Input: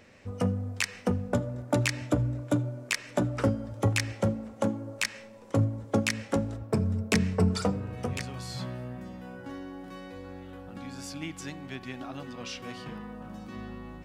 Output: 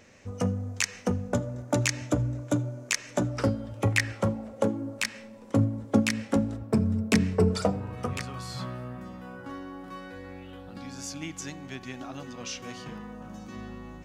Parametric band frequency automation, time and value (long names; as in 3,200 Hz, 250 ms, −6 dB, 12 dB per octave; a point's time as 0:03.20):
parametric band +9.5 dB 0.37 octaves
0:03.27 6,400 Hz
0:04.06 1,700 Hz
0:04.91 240 Hz
0:07.14 240 Hz
0:08.00 1,200 Hz
0:09.98 1,200 Hz
0:10.98 6,400 Hz